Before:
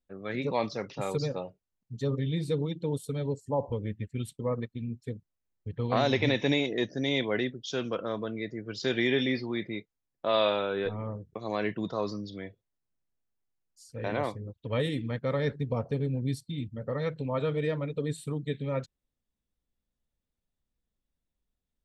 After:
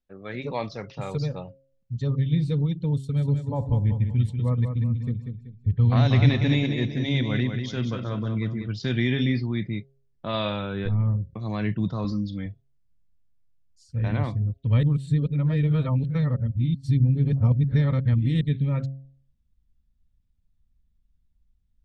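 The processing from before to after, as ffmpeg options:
-filter_complex "[0:a]asettb=1/sr,asplit=3[s0][s1][s2];[s0]atrim=end=2.984[s3];[s1]atrim=start=2.98:end=8.68,asetpts=PTS-STARTPTS,afade=t=in:d=0.004:c=qsin,afade=t=out:st=5.696:d=0.004:c=qsin,aecho=1:1:190|380|570|760:0.447|0.161|0.0579|0.0208,atrim=end_sample=251370[s4];[s2]atrim=start=8.676[s5];[s3][s4]acrossfade=d=0.004:c1=hsin:c2=qsin[s6];[s6][s5]acrossfade=d=0.004:c1=qsin:c2=hsin,asettb=1/sr,asplit=3[s7][s8][s9];[s7]atrim=end=12.044[s10];[s8]atrim=start=12.04:end=12.46,asetpts=PTS-STARTPTS,afade=t=in:d=0.004:c=qsin,afade=t=out:st=0.416:d=0.004:c=qsin,aecho=1:1:3.8:0.67,atrim=end_sample=18522[s11];[s9]atrim=start=12.456[s12];[s10][s11]acrossfade=d=0.004:c1=hsin:c2=qsin[s13];[s13][s12]acrossfade=d=0.004:c1=qsin:c2=hsin,asplit=3[s14][s15][s16];[s14]atrim=end=14.832[s17];[s15]atrim=start=14.828:end=18.412,asetpts=PTS-STARTPTS,areverse[s18];[s16]atrim=start=18.408[s19];[s17][s18]acrossfade=d=0.004:c1=hsin:c2=hsin[s20];[s20][s19]acrossfade=d=0.004:c1=hsin:c2=hsin,asubboost=boost=10.5:cutoff=140,lowpass=5800,bandreject=f=135.1:t=h:w=4,bandreject=f=270.2:t=h:w=4,bandreject=f=405.3:t=h:w=4,bandreject=f=540.4:t=h:w=4,bandreject=f=675.5:t=h:w=4"

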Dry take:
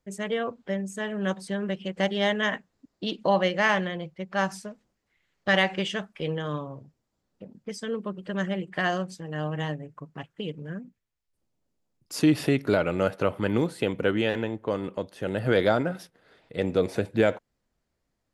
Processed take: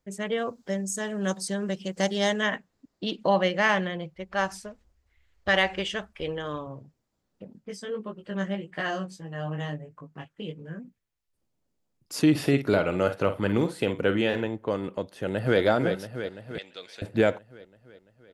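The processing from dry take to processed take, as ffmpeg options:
-filter_complex "[0:a]asettb=1/sr,asplit=3[s0][s1][s2];[s0]atrim=end=0.384[s3];[s1]atrim=start=0.38:end=2.43,asetpts=PTS-STARTPTS,afade=t=in:d=0.004:c=qsin,afade=t=out:st=2.046:d=0.004:c=qsin,highshelf=f=4000:t=q:w=1.5:g=10[s4];[s2]atrim=start=2.426[s5];[s3][s4]acrossfade=d=0.004:c1=hsin:c2=qsin[s6];[s6][s5]acrossfade=d=0.004:c1=qsin:c2=hsin,asettb=1/sr,asplit=3[s7][s8][s9];[s7]atrim=end=4.154[s10];[s8]atrim=start=4.15:end=6.67,asetpts=PTS-STARTPTS,afade=t=in:d=0.004:c=qsin,afade=t=out:st=2.516:d=0.004:c=qsin,lowshelf=f=100:t=q:w=3:g=13.5[s11];[s9]atrim=start=6.666[s12];[s10][s11]acrossfade=d=0.004:c1=hsin:c2=qsin[s13];[s13][s12]acrossfade=d=0.004:c1=qsin:c2=hsin,asplit=3[s14][s15][s16];[s14]afade=t=out:st=7.59:d=0.02[s17];[s15]flanger=delay=18:depth=2.7:speed=1.6,afade=t=in:st=7.59:d=0.02,afade=t=out:st=10.78:d=0.02[s18];[s16]afade=t=in:st=10.78:d=0.02[s19];[s17][s18][s19]amix=inputs=3:normalize=0,asettb=1/sr,asplit=3[s20][s21][s22];[s20]atrim=end=12.304[s23];[s21]atrim=start=12.3:end=14.47,asetpts=PTS-STARTPTS,afade=t=in:d=0.004:c=qsin,afade=t=out:st=2.166:d=0.004:c=qsin,asplit=2[s24][s25];[s25]adelay=50,volume=0.299[s26];[s24][s26]amix=inputs=2:normalize=0,atrim=end_sample=95697[s27];[s22]atrim=start=14.466[s28];[s23][s27]acrossfade=d=0.004:c1=hsin:c2=qsin[s29];[s29][s28]acrossfade=d=0.004:c1=qsin:c2=hsin,asplit=2[s30][s31];[s31]afade=t=in:st=15.1:d=0.01,afade=t=out:st=15.6:d=0.01,aecho=0:1:340|680|1020|1360|1700|2040|2380|2720|3060:0.446684|0.290344|0.188724|0.12267|0.0797358|0.0518283|0.0336884|0.0218974|0.0142333[s32];[s30][s32]amix=inputs=2:normalize=0,asettb=1/sr,asplit=3[s33][s34][s35];[s33]atrim=end=16.584[s36];[s34]atrim=start=16.58:end=17.02,asetpts=PTS-STARTPTS,afade=t=in:d=0.004:c=qsin,afade=t=out:st=0.436:d=0.004:c=qsin,bandpass=f=3800:t=q:w=1.5[s37];[s35]atrim=start=17.016[s38];[s36][s37]acrossfade=d=0.004:c1=hsin:c2=qsin[s39];[s39][s38]acrossfade=d=0.004:c1=qsin:c2=hsin"

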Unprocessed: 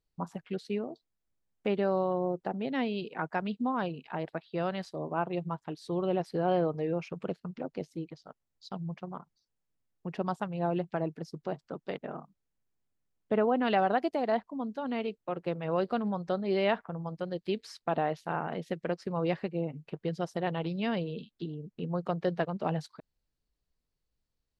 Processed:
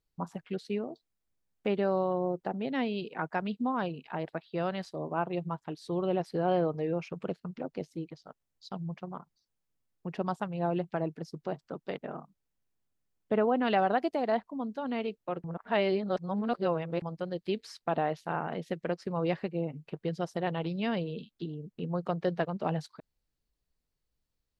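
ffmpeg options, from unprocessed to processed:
-filter_complex "[0:a]asplit=3[s0][s1][s2];[s0]atrim=end=15.442[s3];[s1]atrim=start=15.438:end=17.022,asetpts=PTS-STARTPTS,areverse[s4];[s2]atrim=start=17.018[s5];[s3][s4]acrossfade=d=0.004:c1=hsin:c2=hsin[s6];[s6][s5]acrossfade=d=0.004:c1=hsin:c2=hsin"

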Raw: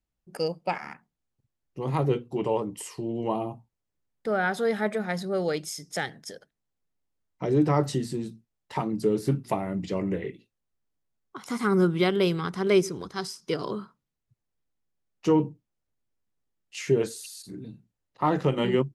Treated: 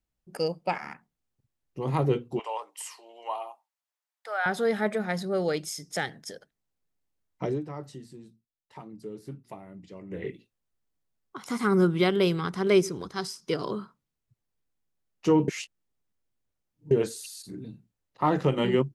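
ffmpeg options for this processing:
-filter_complex "[0:a]asettb=1/sr,asplit=3[s0][s1][s2];[s0]atrim=end=2.394[s3];[s1]atrim=start=2.39:end=4.46,asetpts=PTS-STARTPTS,afade=t=in:d=0.004:c=qsin,afade=t=out:st=2.066:d=0.004:c=qsin,highpass=f=720:w=0.5412,highpass=f=720:w=1.3066[s4];[s2]atrim=start=4.456[s5];[s3][s4]acrossfade=d=0.004:c1=hsin:c2=qsin[s6];[s6][s5]acrossfade=d=0.004:c1=qsin:c2=hsin,asplit=5[s7][s8][s9][s10][s11];[s7]atrim=end=7.61,asetpts=PTS-STARTPTS,afade=t=out:st=7.44:d=0.17:silence=0.16788[s12];[s8]atrim=start=7.61:end=10.09,asetpts=PTS-STARTPTS,volume=0.168[s13];[s9]atrim=start=10.09:end=15.482,asetpts=PTS-STARTPTS,afade=t=in:d=0.17:silence=0.16788[s14];[s10]atrim=start=15.478:end=16.912,asetpts=PTS-STARTPTS,areverse[s15];[s11]atrim=start=16.908[s16];[s12][s13][s14]concat=n=3:v=0:a=1[s17];[s17][s15]acrossfade=d=0.004:c1=hsin:c2=hsin[s18];[s18][s16]acrossfade=d=0.004:c1=hsin:c2=hsin"

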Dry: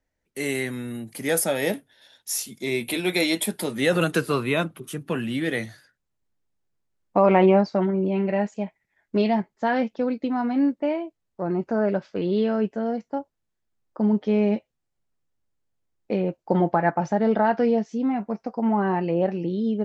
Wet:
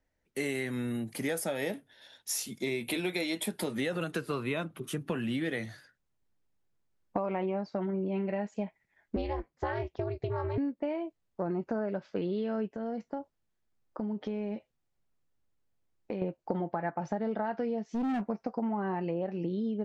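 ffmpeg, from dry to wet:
-filter_complex "[0:a]asettb=1/sr,asplit=3[s0][s1][s2];[s0]atrim=end=9.164[s3];[s1]atrim=start=9.16:end=10.58,asetpts=PTS-STARTPTS,afade=t=in:d=0.004:c=qsin,afade=t=out:st=1.416:d=0.004:c=qsin,aeval=exprs='val(0)*sin(2*PI*150*n/s)':c=same[s4];[s2]atrim=start=10.576[s5];[s3][s4]acrossfade=d=0.004:c1=hsin:c2=qsin[s6];[s6][s5]acrossfade=d=0.004:c1=qsin:c2=hsin,asettb=1/sr,asplit=3[s7][s8][s9];[s7]atrim=end=12.764[s10];[s8]atrim=start=12.76:end=16.22,asetpts=PTS-STARTPTS,afade=t=in:d=0.004:c=qsin,afade=t=out:st=3.456:d=0.004:c=qsin,acompressor=threshold=0.0282:ratio=6:attack=3.2:release=140:knee=1:detection=peak[s11];[s9]atrim=start=16.216[s12];[s10][s11]acrossfade=d=0.004:c1=hsin:c2=qsin[s13];[s13][s12]acrossfade=d=0.004:c1=qsin:c2=hsin,asettb=1/sr,asplit=3[s14][s15][s16];[s14]atrim=end=17.824[s17];[s15]atrim=start=17.82:end=18.26,asetpts=PTS-STARTPTS,afade=t=in:d=0.004:c=qsin,afade=t=out:st=0.436:d=0.004:c=qsin,asoftclip=type=hard:threshold=0.0501[s18];[s16]atrim=start=18.256[s19];[s17][s18]acrossfade=d=0.004:c1=hsin:c2=qsin[s20];[s20][s19]acrossfade=d=0.004:c1=qsin:c2=hsin,highshelf=f=6200:g=-6,acompressor=threshold=0.0355:ratio=10"

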